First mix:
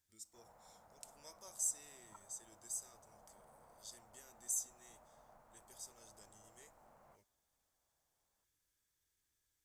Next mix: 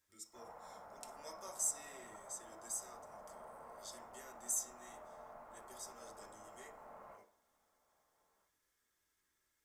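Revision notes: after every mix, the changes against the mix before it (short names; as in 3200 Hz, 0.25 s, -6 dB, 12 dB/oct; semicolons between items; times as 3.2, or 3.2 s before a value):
background +4.0 dB; reverb: on, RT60 0.50 s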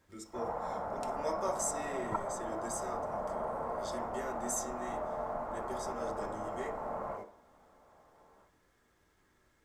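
second voice +9.0 dB; master: remove pre-emphasis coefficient 0.9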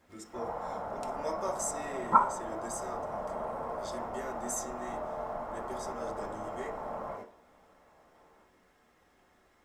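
second voice: send on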